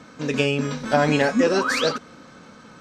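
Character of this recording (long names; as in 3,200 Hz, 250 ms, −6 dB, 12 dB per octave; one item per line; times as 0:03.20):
background noise floor −47 dBFS
spectral slope −4.0 dB per octave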